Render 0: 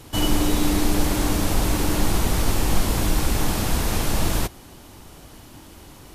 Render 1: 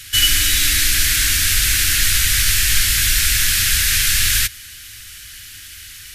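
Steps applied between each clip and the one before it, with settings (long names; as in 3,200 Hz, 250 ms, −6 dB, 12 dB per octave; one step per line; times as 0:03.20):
drawn EQ curve 100 Hz 0 dB, 160 Hz −12 dB, 890 Hz −24 dB, 1,600 Hz +14 dB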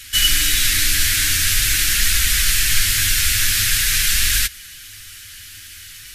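flanger 0.46 Hz, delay 3.5 ms, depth 8 ms, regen −25%
level +2.5 dB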